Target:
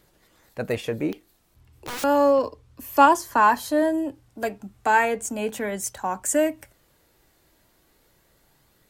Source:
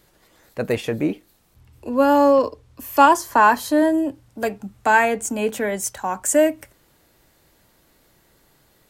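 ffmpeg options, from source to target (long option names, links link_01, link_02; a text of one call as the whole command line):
ffmpeg -i in.wav -filter_complex "[0:a]aphaser=in_gain=1:out_gain=1:delay=3.2:decay=0.22:speed=0.33:type=triangular,asettb=1/sr,asplit=3[link_01][link_02][link_03];[link_01]atrim=end=1.124[link_04];[link_02]atrim=start=1.12:end=2.04,asetpts=PTS-STARTPTS,afade=type=in:duration=0.004:curve=qsin,afade=type=out:start_time=0.916:duration=0.004:curve=qsin,aeval=exprs='(mod(15*val(0)+1,2)-1)/15':channel_layout=same[link_05];[link_03]atrim=start=2.036[link_06];[link_04][link_05]acrossfade=duration=0.004:curve1=hsin:curve2=qsin[link_07];[link_07][link_06]acrossfade=duration=0.004:curve1=qsin:curve2=hsin,volume=-4dB" out.wav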